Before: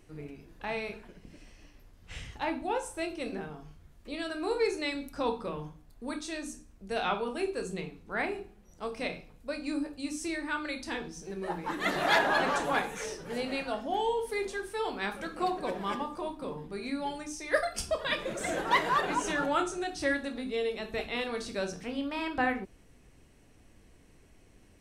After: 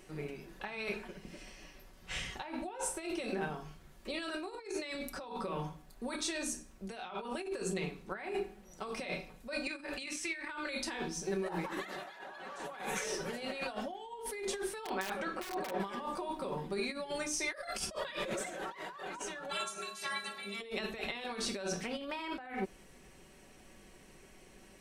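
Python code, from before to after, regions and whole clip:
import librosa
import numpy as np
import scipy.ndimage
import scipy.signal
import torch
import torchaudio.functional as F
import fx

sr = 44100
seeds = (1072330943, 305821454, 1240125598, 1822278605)

y = fx.chain(x, sr, fx.over_compress(threshold_db=-39.0, ratio=-0.5),
    fx.peak_eq(hz=2200.0, db=14.0, octaves=1.8), at=(9.67, 10.48))
y = fx.chain(y, sr, fx.lowpass(hz=2100.0, slope=6),
    fx.low_shelf(hz=200.0, db=-5.5),
    fx.overflow_wrap(gain_db=26.5), at=(14.85, 15.8))
y = fx.spec_clip(y, sr, under_db=25, at=(19.49, 20.6), fade=0.02)
y = fx.highpass(y, sr, hz=73.0, slope=12, at=(19.49, 20.6), fade=0.02)
y = fx.stiff_resonator(y, sr, f0_hz=200.0, decay_s=0.29, stiffness=0.008, at=(19.49, 20.6), fade=0.02)
y = fx.low_shelf(y, sr, hz=200.0, db=-10.0)
y = fx.over_compress(y, sr, threshold_db=-41.0, ratio=-1.0)
y = y + 0.47 * np.pad(y, (int(5.3 * sr / 1000.0), 0))[:len(y)]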